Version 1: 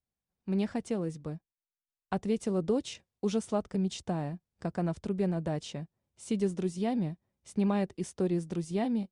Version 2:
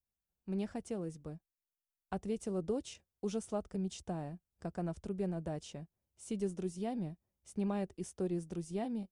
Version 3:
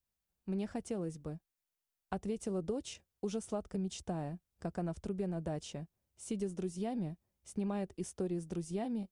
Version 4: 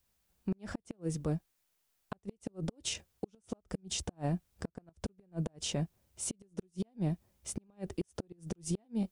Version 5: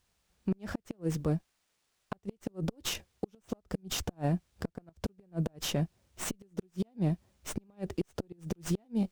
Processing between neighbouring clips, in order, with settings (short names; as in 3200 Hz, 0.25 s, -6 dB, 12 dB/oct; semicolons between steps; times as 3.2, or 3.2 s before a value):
graphic EQ 125/250/500/1000/2000/4000/8000 Hz -9/-7/-5/-7/-8/-9/-4 dB; gain +1.5 dB
compressor 4:1, threshold -36 dBFS, peak gain reduction 5.5 dB; gain +3 dB
flipped gate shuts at -29 dBFS, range -41 dB; limiter -36.5 dBFS, peak gain reduction 10 dB; gain +11.5 dB
running maximum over 3 samples; gain +3.5 dB